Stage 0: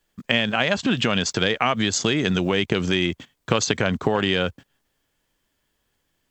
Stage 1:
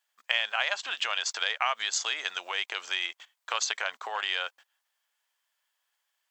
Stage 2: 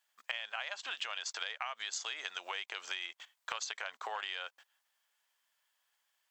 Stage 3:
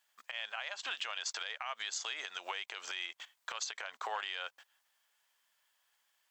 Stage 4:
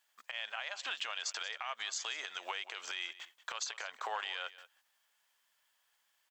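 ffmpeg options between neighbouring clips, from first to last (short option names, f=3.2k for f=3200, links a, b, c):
-af "highpass=f=770:w=0.5412,highpass=f=770:w=1.3066,volume=-5dB"
-af "acompressor=threshold=-36dB:ratio=6"
-af "alimiter=level_in=5dB:limit=-24dB:level=0:latency=1:release=98,volume=-5dB,volume=3dB"
-af "aecho=1:1:183:0.15"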